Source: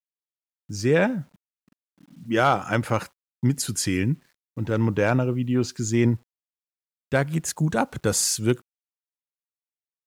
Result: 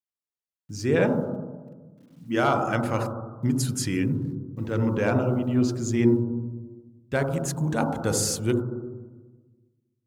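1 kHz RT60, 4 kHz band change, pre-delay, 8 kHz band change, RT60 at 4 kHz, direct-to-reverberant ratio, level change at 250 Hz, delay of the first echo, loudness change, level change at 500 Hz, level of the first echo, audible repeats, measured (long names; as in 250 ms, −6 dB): 1.2 s, −4.0 dB, 27 ms, −4.0 dB, 1.1 s, 4.5 dB, +0.5 dB, no echo audible, −1.5 dB, −0.5 dB, no echo audible, no echo audible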